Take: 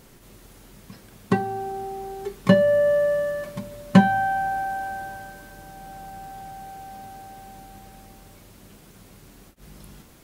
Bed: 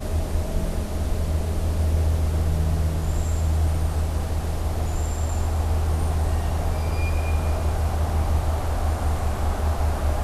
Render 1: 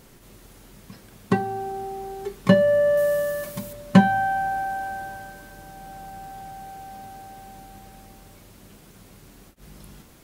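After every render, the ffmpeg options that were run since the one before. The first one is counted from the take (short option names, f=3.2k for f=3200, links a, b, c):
-filter_complex "[0:a]asettb=1/sr,asplit=3[a][b][c];[a]atrim=end=2.974[d];[b]atrim=start=2.97:end=3.73,asetpts=PTS-STARTPTS,afade=t=in:d=0.004:c=qsin,afade=t=out:st=0.756:d=0.004:c=qsin,aemphasis=mode=production:type=50kf[e];[c]atrim=start=3.726[f];[d][e]acrossfade=d=0.004:c1=hsin:c2=qsin[g];[g][f]acrossfade=d=0.004:c1=qsin:c2=hsin"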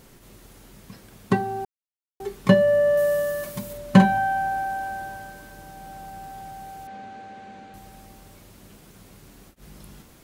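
-filter_complex "[0:a]asettb=1/sr,asplit=3[a][b][c];[a]atrim=end=3.654[d];[b]atrim=start=3.65:end=4.18,asetpts=PTS-STARTPTS,afade=t=in:d=0.004:c=qsin,afade=t=out:st=0.526:d=0.004:c=qsin,asplit=2[e][f];[f]adelay=48,volume=-6dB[g];[e][g]amix=inputs=2:normalize=0,atrim=end_sample=23373[h];[c]atrim=start=4.176[i];[d][h]acrossfade=d=0.004:c1=hsin:c2=qsin[j];[j][i]acrossfade=d=0.004:c1=qsin:c2=hsin,asettb=1/sr,asplit=3[k][l][m];[k]atrim=end=6.874[n];[l]atrim=start=6.87:end=7.74,asetpts=PTS-STARTPTS,afade=t=in:d=0.004:c=qsin,afade=t=out:st=0.866:d=0.004:c=qsin,highpass=110,equalizer=f=140:t=q:w=4:g=-8,equalizer=f=220:t=q:w=4:g=6,equalizer=f=490:t=q:w=4:g=6,equalizer=f=1.6k:t=q:w=4:g=5,equalizer=f=2.3k:t=q:w=4:g=4,equalizer=f=5.3k:t=q:w=4:g=-8,lowpass=f=5.8k:w=0.5412,lowpass=f=5.8k:w=1.3066[o];[m]atrim=start=7.736[p];[n][o]acrossfade=d=0.004:c1=hsin:c2=qsin[q];[q][p]acrossfade=d=0.004:c1=qsin:c2=hsin,asplit=3[r][s][t];[r]atrim=end=1.65,asetpts=PTS-STARTPTS,afade=t=out:st=1.646:d=0.004:c=hsin[u];[s]atrim=start=1.65:end=2.2,asetpts=PTS-STARTPTS,volume=0[v];[t]atrim=start=2.2,asetpts=PTS-STARTPTS,afade=t=in:d=0.004:c=hsin[w];[u][v][w]concat=n=3:v=0:a=1"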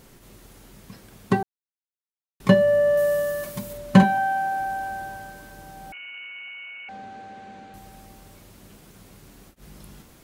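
-filter_complex "[0:a]asettb=1/sr,asplit=3[a][b][c];[a]atrim=end=4.034[d];[b]atrim=start=4.03:end=4.6,asetpts=PTS-STARTPTS,afade=t=in:d=0.004:c=qsin,afade=t=out:st=0.566:d=0.004:c=qsin,highpass=180[e];[c]atrim=start=4.596[f];[d][e]acrossfade=d=0.004:c1=hsin:c2=qsin[g];[g][f]acrossfade=d=0.004:c1=qsin:c2=hsin,asettb=1/sr,asplit=3[h][i][j];[h]atrim=end=5.924[k];[i]atrim=start=5.92:end=6.89,asetpts=PTS-STARTPTS,afade=t=in:d=0.004:c=qsin,afade=t=out:st=0.966:d=0.004:c=qsin,lowpass=f=2.6k:t=q:w=0.5098,lowpass=f=2.6k:t=q:w=0.6013,lowpass=f=2.6k:t=q:w=0.9,lowpass=f=2.6k:t=q:w=2.563,afreqshift=-3000[l];[j]atrim=start=6.886[m];[k][l]acrossfade=d=0.004:c1=hsin:c2=qsin[n];[n][m]acrossfade=d=0.004:c1=qsin:c2=hsin,asplit=3[o][p][q];[o]atrim=end=1.43,asetpts=PTS-STARTPTS,afade=t=out:st=1.426:d=0.004:c=hsin[r];[p]atrim=start=1.43:end=2.4,asetpts=PTS-STARTPTS,volume=0[s];[q]atrim=start=2.4,asetpts=PTS-STARTPTS,afade=t=in:d=0.004:c=hsin[t];[r][s][t]concat=n=3:v=0:a=1"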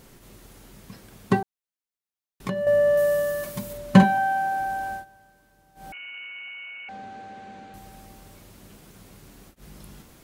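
-filter_complex "[0:a]asettb=1/sr,asplit=3[a][b][c];[a]atrim=end=1.394[d];[b]atrim=start=1.39:end=2.67,asetpts=PTS-STARTPTS,afade=t=in:d=0.004:c=qsin,afade=t=out:st=1.276:d=0.004:c=qsin,acompressor=threshold=-25dB:ratio=6:attack=3.2:release=140:knee=1:detection=peak[e];[c]atrim=start=2.666[f];[d][e]acrossfade=d=0.004:c1=hsin:c2=qsin[g];[g][f]acrossfade=d=0.004:c1=qsin:c2=hsin,asplit=3[h][i][j];[h]atrim=end=5.05,asetpts=PTS-STARTPTS,afade=t=out:st=4.91:d=0.14:c=qsin:silence=0.141254[k];[i]atrim=start=5.05:end=5.75,asetpts=PTS-STARTPTS,volume=-17dB[l];[j]atrim=start=5.75,asetpts=PTS-STARTPTS,afade=t=in:d=0.14:c=qsin:silence=0.141254[m];[k][l][m]concat=n=3:v=0:a=1"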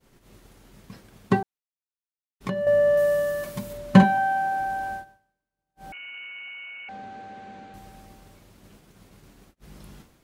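-af "agate=range=-33dB:threshold=-44dB:ratio=3:detection=peak,highshelf=f=7.6k:g=-7"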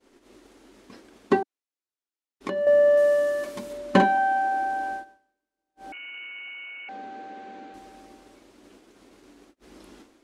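-af "lowpass=8.9k,lowshelf=f=210:t=q:w=3:g=-11"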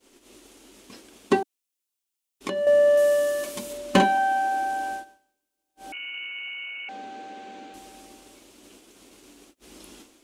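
-af "asoftclip=type=hard:threshold=-8.5dB,aexciter=amount=2:drive=6.6:freq=2.5k"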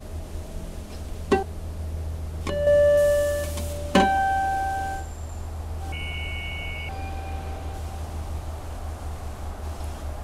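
-filter_complex "[1:a]volume=-10dB[a];[0:a][a]amix=inputs=2:normalize=0"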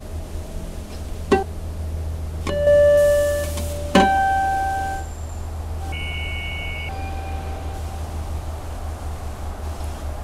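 -af "volume=4dB"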